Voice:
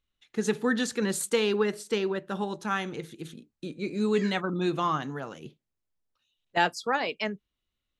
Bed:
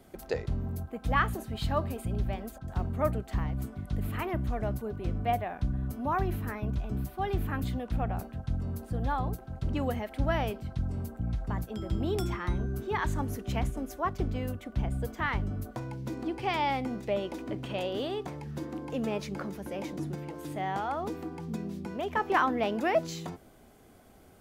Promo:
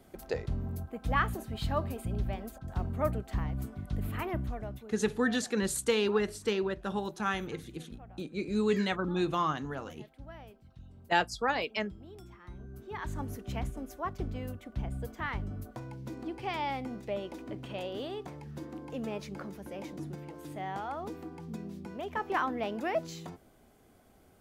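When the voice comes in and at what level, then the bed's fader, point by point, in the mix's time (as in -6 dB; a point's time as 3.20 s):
4.55 s, -2.5 dB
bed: 4.37 s -2 dB
5.18 s -19.5 dB
12.34 s -19.5 dB
13.22 s -5 dB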